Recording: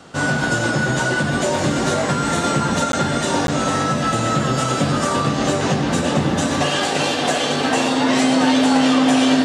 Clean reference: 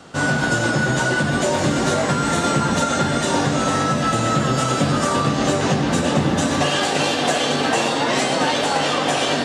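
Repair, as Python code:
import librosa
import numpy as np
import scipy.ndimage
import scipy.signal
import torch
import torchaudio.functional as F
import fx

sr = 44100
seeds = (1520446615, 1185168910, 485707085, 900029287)

y = fx.notch(x, sr, hz=260.0, q=30.0)
y = fx.fix_interpolate(y, sr, at_s=(2.92, 3.47), length_ms=12.0)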